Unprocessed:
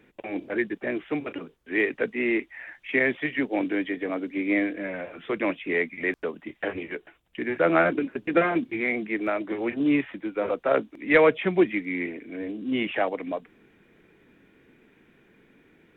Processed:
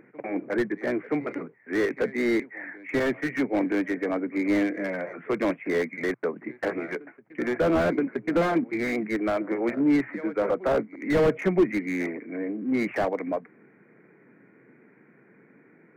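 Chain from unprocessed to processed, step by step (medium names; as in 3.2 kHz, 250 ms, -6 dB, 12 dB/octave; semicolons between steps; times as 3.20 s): Chebyshev band-pass 120–2200 Hz, order 5; in parallel at -7 dB: saturation -23.5 dBFS, distortion -8 dB; on the sum: reverse echo 973 ms -22.5 dB; slew-rate limiter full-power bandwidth 66 Hz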